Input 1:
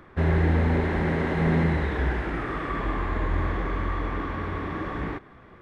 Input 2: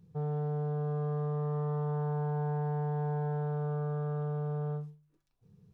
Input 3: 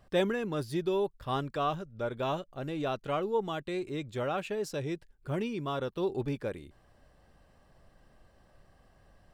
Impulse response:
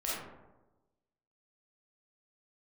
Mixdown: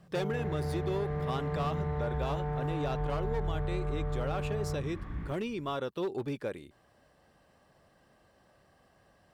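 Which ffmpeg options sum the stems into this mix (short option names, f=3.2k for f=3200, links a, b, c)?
-filter_complex "[0:a]asubboost=boost=9.5:cutoff=160,adelay=150,volume=-15.5dB[a];[1:a]volume=3dB[b];[2:a]highpass=74,volume=26dB,asoftclip=hard,volume=-26dB,volume=1dB[c];[a][b][c]amix=inputs=3:normalize=0,equalizer=f=73:w=0.45:g=-5,acompressor=threshold=-30dB:ratio=2.5"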